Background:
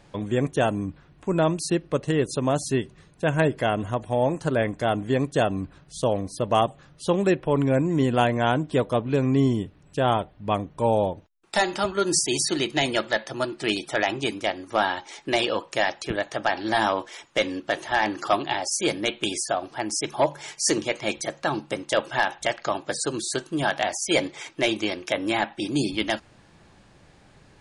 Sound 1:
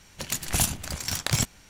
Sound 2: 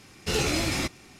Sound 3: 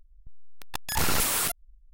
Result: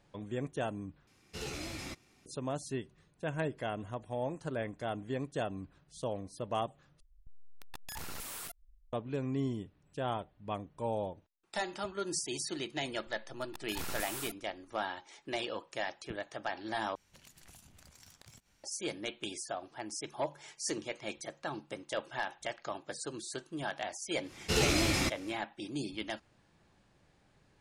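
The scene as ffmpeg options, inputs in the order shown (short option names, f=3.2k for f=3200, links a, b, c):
-filter_complex "[2:a]asplit=2[a][b];[3:a]asplit=2[c][d];[0:a]volume=-13.5dB[e];[c]acompressor=threshold=-31dB:ratio=6:attack=3.2:release=140:knee=1:detection=peak[f];[1:a]acompressor=threshold=-37dB:ratio=6:attack=3.2:release=140:knee=1:detection=peak[g];[e]asplit=4[h][i][j][k];[h]atrim=end=1.074[l];[a]atrim=end=1.19,asetpts=PTS-STARTPTS,volume=-15dB[m];[i]atrim=start=2.256:end=7.004[n];[f]atrim=end=1.93,asetpts=PTS-STARTPTS,volume=-8.5dB[o];[j]atrim=start=8.926:end=16.954[p];[g]atrim=end=1.69,asetpts=PTS-STARTPTS,volume=-17dB[q];[k]atrim=start=18.636[r];[d]atrim=end=1.93,asetpts=PTS-STARTPTS,volume=-15dB,afade=t=in:d=0.004:c=hsin,afade=t=out:st=1.926:d=0.004:c=hsin,adelay=12800[s];[b]atrim=end=1.19,asetpts=PTS-STARTPTS,volume=-2.5dB,afade=t=in:d=0.1,afade=t=out:st=1.09:d=0.1,adelay=24220[t];[l][m]acrossfade=d=0.004:c1=hsin:c2=hsin[u];[u][n]acrossfade=d=0.004:c1=hsin:c2=hsin[v];[v][o]acrossfade=d=0.004:c1=hsin:c2=hsin[w];[w][p]acrossfade=d=0.004:c1=hsin:c2=hsin[x];[x][q]acrossfade=d=0.004:c1=hsin:c2=hsin[y];[y][r]acrossfade=d=0.004:c1=hsin:c2=hsin[z];[z][s][t]amix=inputs=3:normalize=0"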